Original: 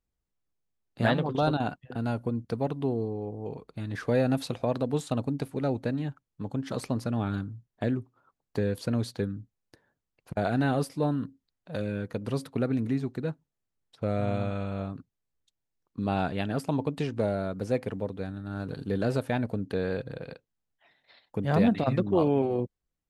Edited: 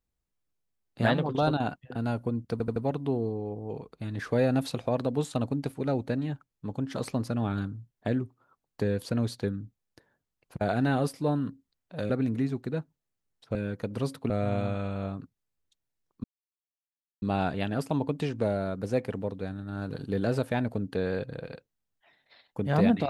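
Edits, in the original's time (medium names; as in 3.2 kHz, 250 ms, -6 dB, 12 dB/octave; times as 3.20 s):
2.52 s: stutter 0.08 s, 4 plays
11.86–12.61 s: move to 14.06 s
16.00 s: insert silence 0.98 s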